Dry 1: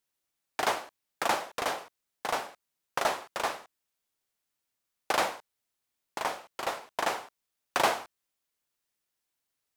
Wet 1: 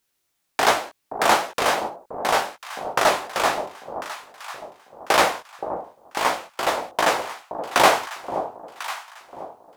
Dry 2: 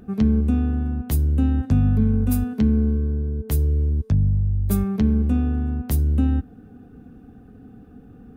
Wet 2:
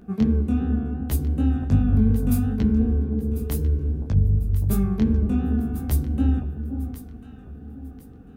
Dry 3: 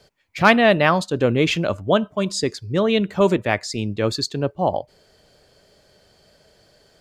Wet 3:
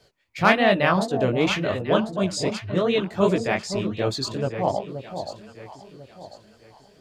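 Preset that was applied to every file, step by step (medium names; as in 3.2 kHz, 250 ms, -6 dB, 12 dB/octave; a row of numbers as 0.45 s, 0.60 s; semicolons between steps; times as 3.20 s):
chorus 2.7 Hz, delay 15.5 ms, depth 8 ms; echo whose repeats swap between lows and highs 523 ms, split 880 Hz, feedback 56%, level -8 dB; normalise loudness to -23 LUFS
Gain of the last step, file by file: +13.0 dB, +1.5 dB, -0.5 dB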